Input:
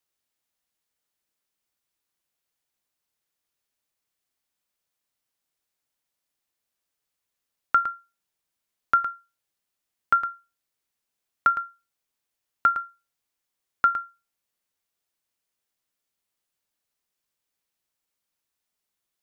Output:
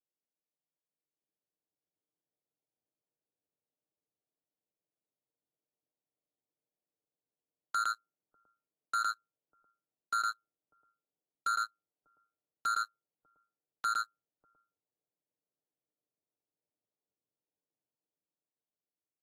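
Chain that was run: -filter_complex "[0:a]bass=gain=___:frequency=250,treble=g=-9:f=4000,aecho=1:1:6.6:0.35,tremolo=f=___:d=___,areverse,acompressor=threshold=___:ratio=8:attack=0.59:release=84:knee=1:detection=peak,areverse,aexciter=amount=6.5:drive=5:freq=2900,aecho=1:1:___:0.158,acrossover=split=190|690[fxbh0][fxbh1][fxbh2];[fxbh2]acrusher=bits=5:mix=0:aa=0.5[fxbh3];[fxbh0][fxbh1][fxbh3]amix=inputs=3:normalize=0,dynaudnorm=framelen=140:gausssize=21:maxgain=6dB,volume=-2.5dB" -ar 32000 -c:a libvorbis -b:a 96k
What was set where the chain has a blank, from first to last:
-7, 110, 0.621, -32dB, 597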